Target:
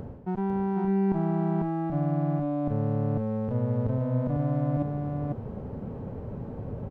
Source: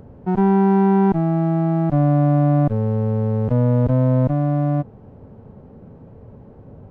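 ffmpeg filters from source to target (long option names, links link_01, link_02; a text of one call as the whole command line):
ffmpeg -i in.wav -af "areverse,acompressor=threshold=-29dB:ratio=16,areverse,aecho=1:1:498:0.668,volume=4dB" out.wav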